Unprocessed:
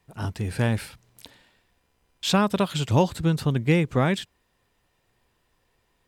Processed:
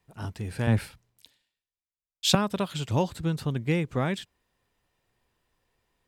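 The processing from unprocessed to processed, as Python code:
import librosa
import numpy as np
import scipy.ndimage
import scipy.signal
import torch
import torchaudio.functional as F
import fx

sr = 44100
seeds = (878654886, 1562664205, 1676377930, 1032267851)

y = fx.band_widen(x, sr, depth_pct=100, at=(0.67, 2.35))
y = F.gain(torch.from_numpy(y), -5.5).numpy()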